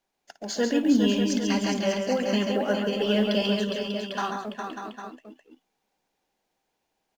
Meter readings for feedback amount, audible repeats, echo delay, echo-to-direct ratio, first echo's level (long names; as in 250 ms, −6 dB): repeats not evenly spaced, 5, 56 ms, −1.0 dB, −14.0 dB